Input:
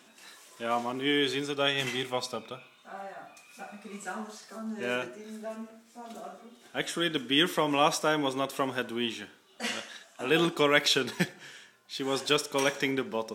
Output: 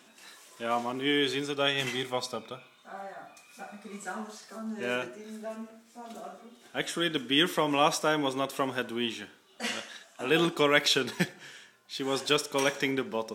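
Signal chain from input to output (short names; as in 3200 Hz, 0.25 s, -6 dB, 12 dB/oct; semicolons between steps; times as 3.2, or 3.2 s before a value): 1.92–4.16 notch 2700 Hz, Q 8.1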